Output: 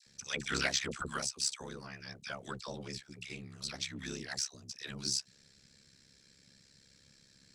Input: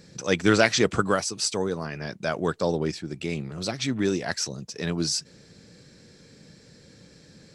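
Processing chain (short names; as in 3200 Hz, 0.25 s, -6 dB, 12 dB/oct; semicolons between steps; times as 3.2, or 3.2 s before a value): passive tone stack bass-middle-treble 5-5-5; dispersion lows, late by 68 ms, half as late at 1000 Hz; ring modulator 34 Hz; in parallel at -10.5 dB: soft clip -31 dBFS, distortion -13 dB; on the sum: gain +1 dB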